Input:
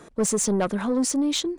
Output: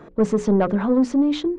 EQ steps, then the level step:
head-to-tape spacing loss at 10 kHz 36 dB
mains-hum notches 60/120/180/240/300/360/420/480/540 Hz
+7.0 dB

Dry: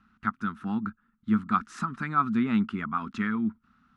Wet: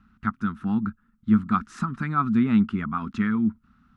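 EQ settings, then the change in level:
low-shelf EQ 200 Hz +11.5 dB
0.0 dB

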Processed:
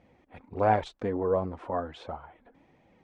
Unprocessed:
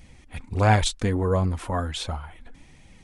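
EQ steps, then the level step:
resonant band-pass 560 Hz, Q 1
high-frequency loss of the air 52 metres
0.0 dB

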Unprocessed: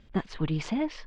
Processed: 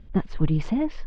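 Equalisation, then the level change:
spectral tilt −2.5 dB per octave
0.0 dB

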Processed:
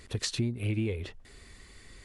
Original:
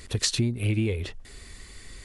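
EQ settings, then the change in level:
low-shelf EQ 62 Hz −5.5 dB
high-shelf EQ 3,900 Hz −6 dB
−4.0 dB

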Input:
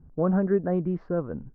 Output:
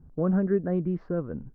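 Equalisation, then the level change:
dynamic equaliser 840 Hz, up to −7 dB, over −41 dBFS, Q 1.1
0.0 dB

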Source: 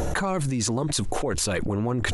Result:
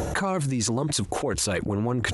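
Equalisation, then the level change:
high-pass filter 60 Hz
0.0 dB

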